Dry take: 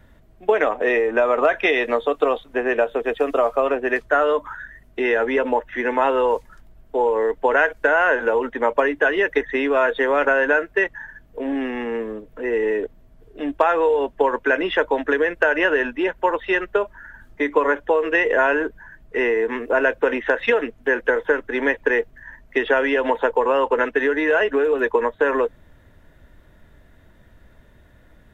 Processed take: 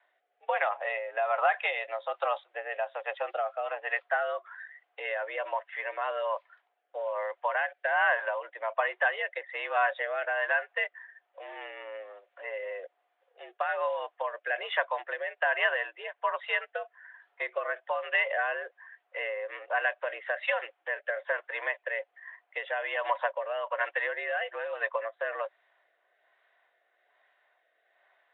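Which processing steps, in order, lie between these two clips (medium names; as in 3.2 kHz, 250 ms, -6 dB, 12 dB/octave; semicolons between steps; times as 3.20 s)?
rotary cabinet horn 1.2 Hz; mistuned SSB +79 Hz 560–3400 Hz; trim -6 dB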